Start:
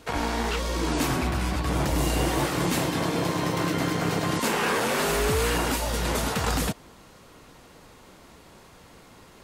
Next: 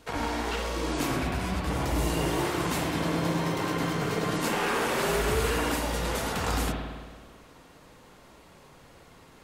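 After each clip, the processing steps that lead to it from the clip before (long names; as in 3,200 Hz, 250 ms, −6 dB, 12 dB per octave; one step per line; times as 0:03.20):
flanger 1.1 Hz, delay 0.9 ms, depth 6.8 ms, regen +81%
on a send at −2 dB: convolution reverb RT60 1.5 s, pre-delay 54 ms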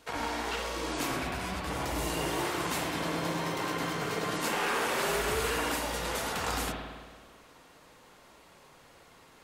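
low-shelf EQ 340 Hz −8.5 dB
level −1 dB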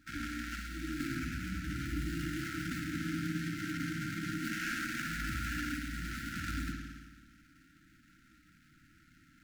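running median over 15 samples
brick-wall band-stop 340–1,300 Hz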